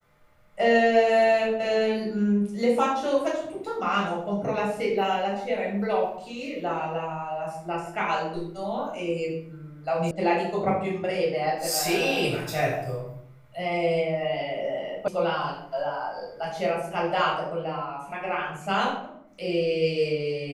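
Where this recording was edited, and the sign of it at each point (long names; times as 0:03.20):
0:10.11: cut off before it has died away
0:15.08: cut off before it has died away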